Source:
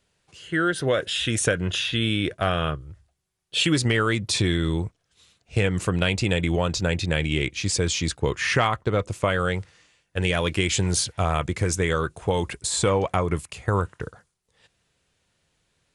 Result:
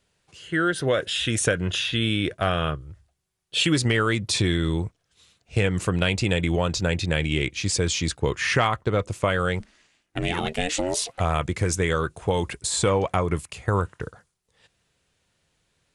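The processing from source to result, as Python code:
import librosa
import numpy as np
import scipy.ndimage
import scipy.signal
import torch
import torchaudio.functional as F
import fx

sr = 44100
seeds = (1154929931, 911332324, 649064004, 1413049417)

y = fx.ring_mod(x, sr, carrier_hz=fx.line((9.59, 110.0), (11.19, 660.0)), at=(9.59, 11.19), fade=0.02)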